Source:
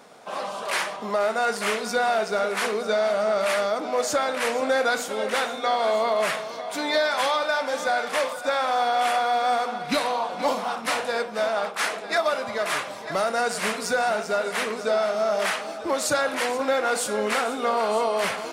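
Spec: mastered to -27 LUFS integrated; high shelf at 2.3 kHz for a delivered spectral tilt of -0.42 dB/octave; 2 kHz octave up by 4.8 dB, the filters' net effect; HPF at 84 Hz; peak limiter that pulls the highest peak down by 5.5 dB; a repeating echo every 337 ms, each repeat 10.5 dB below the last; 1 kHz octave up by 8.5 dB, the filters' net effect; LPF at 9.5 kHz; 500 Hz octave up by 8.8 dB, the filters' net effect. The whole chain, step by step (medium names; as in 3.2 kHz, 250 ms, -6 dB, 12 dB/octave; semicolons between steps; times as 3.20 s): high-pass 84 Hz; low-pass 9.5 kHz; peaking EQ 500 Hz +8 dB; peaking EQ 1 kHz +8.5 dB; peaking EQ 2 kHz +3.5 dB; treble shelf 2.3 kHz -3 dB; peak limiter -8.5 dBFS; feedback delay 337 ms, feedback 30%, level -10.5 dB; trim -9 dB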